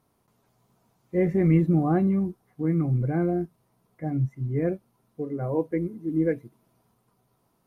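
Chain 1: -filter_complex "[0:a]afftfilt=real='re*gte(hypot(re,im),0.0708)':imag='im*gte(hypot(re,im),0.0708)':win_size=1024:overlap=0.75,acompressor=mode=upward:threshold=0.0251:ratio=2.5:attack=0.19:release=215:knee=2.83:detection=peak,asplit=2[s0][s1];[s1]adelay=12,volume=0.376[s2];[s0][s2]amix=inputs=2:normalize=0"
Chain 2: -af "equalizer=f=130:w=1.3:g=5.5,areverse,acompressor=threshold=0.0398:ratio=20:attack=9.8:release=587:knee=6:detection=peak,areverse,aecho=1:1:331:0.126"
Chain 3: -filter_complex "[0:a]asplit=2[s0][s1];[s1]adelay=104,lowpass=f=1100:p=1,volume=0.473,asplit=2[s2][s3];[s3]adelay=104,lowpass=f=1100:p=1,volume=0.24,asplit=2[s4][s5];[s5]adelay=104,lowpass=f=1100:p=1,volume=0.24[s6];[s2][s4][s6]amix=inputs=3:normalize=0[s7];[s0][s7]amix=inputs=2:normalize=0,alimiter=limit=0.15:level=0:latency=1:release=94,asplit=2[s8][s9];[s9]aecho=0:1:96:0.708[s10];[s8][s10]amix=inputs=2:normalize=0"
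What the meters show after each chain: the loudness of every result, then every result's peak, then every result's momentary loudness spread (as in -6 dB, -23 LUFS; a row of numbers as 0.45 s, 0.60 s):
-25.0 LUFS, -35.0 LUFS, -25.5 LUFS; -8.5 dBFS, -21.5 dBFS, -12.0 dBFS; 15 LU, 9 LU, 11 LU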